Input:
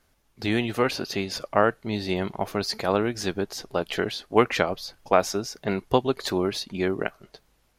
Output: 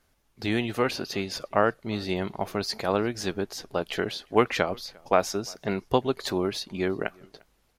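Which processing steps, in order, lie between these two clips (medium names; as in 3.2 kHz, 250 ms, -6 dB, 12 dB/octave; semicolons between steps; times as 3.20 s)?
echo from a far wall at 60 m, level -27 dB; trim -2 dB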